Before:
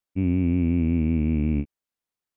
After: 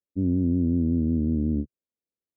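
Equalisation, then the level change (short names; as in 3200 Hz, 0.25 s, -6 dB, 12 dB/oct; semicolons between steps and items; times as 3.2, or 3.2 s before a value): HPF 70 Hz; steep low-pass 590 Hz 48 dB/oct; bell 130 Hz -15 dB 0.24 oct; 0.0 dB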